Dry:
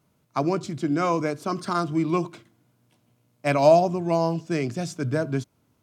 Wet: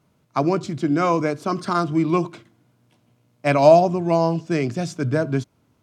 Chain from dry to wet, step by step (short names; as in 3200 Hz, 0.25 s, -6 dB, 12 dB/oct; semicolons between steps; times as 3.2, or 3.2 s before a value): high shelf 8400 Hz -8.5 dB; gain +4 dB